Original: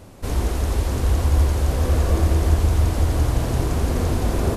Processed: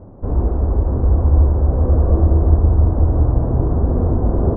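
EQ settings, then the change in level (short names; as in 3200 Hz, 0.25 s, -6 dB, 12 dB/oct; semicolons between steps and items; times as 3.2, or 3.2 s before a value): Bessel low-pass 720 Hz, order 6; +5.0 dB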